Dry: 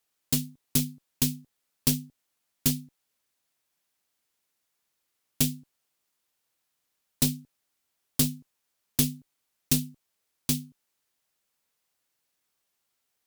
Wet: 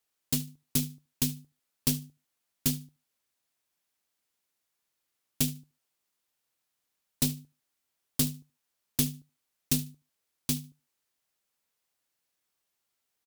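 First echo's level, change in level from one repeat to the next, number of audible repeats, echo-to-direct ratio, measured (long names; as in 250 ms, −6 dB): −19.0 dB, −15.5 dB, 2, −19.0 dB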